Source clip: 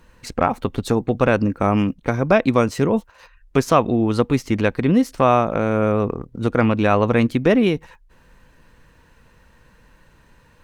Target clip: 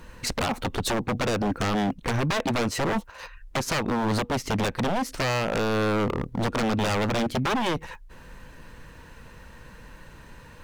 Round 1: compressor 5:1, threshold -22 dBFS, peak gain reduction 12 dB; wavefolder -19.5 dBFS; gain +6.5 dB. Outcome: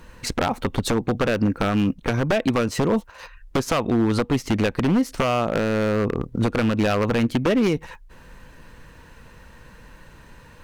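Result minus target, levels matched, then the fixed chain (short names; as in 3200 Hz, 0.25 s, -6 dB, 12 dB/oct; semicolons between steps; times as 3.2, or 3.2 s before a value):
wavefolder: distortion -12 dB
compressor 5:1, threshold -22 dBFS, peak gain reduction 12 dB; wavefolder -26 dBFS; gain +6.5 dB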